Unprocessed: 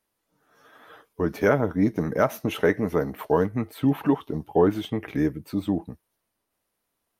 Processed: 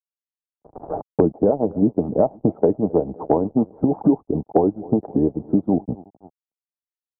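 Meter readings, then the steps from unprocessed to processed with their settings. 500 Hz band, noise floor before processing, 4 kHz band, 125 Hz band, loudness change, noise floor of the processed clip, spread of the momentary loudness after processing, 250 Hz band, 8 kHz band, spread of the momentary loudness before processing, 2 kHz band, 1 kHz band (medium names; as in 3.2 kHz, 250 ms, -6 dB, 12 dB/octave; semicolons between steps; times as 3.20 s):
+4.0 dB, -79 dBFS, under -35 dB, +2.0 dB, +4.0 dB, under -85 dBFS, 5 LU, +5.5 dB, no reading, 8 LU, under -20 dB, +2.5 dB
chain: harmonic-percussive split harmonic -18 dB; on a send: feedback delay 258 ms, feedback 51%, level -24 dB; on the sum: crossover distortion -53.5 dBFS; elliptic low-pass 800 Hz, stop band 70 dB; three bands compressed up and down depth 100%; trim +8.5 dB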